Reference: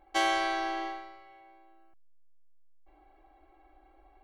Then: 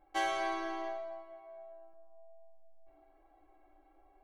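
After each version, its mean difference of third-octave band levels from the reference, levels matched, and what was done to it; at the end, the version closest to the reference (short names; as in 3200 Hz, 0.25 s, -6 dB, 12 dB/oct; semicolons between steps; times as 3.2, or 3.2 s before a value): 2.0 dB: bell 4600 Hz -5 dB 2.1 oct; resonator 150 Hz, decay 0.48 s, harmonics all, mix 50%; on a send: narrowing echo 0.118 s, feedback 84%, band-pass 650 Hz, level -8.5 dB; on the sum: flange 1.5 Hz, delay 9.6 ms, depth 1 ms, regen -33%; gain +4 dB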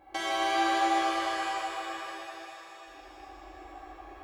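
10.5 dB: HPF 52 Hz 12 dB/oct; compressor 5:1, threshold -40 dBFS, peak gain reduction 15 dB; tape echo 0.164 s, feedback 75%, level -5.5 dB, low-pass 3700 Hz; shimmer reverb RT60 3.6 s, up +7 st, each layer -8 dB, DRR -8.5 dB; gain +4 dB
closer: first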